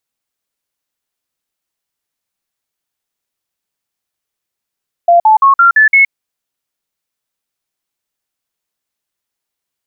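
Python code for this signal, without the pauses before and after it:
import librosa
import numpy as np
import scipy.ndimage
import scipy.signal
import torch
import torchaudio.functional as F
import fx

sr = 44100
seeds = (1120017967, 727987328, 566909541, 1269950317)

y = fx.stepped_sweep(sr, from_hz=690.0, direction='up', per_octave=3, tones=6, dwell_s=0.12, gap_s=0.05, level_db=-3.5)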